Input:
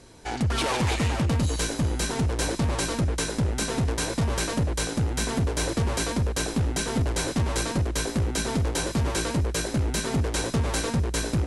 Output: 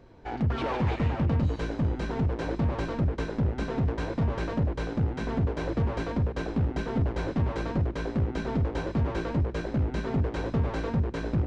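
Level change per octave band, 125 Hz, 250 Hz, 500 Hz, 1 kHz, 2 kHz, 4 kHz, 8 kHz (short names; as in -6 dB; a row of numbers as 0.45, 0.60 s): -1.5 dB, -1.5 dB, -2.0 dB, -3.5 dB, -7.0 dB, -14.5 dB, under -25 dB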